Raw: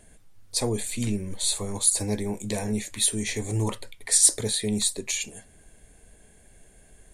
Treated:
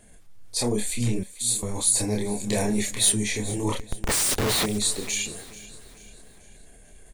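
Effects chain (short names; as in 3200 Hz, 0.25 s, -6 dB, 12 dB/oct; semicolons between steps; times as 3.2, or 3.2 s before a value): chorus voices 4, 0.33 Hz, delay 29 ms, depth 4.5 ms; transient shaper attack -2 dB, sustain +3 dB; 1.23–1.63 differentiator; 2.47–3.12 sample leveller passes 1; 3.79–4.66 Schmitt trigger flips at -34.5 dBFS; feedback echo 0.437 s, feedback 46%, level -17.5 dB; gain +4.5 dB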